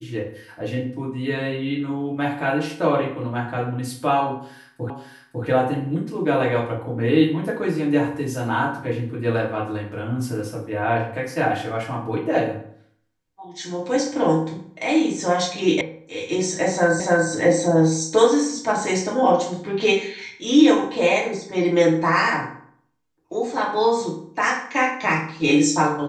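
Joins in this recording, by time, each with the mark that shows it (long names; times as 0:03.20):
0:04.90: the same again, the last 0.55 s
0:15.81: cut off before it has died away
0:17.00: the same again, the last 0.29 s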